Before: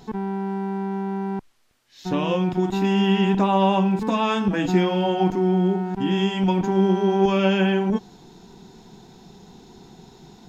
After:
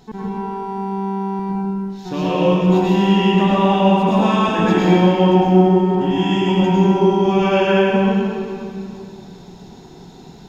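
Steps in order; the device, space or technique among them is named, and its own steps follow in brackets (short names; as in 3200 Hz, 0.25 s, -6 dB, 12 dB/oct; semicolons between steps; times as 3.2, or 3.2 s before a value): stairwell (reverb RT60 2.6 s, pre-delay 94 ms, DRR -7 dB); gain -2 dB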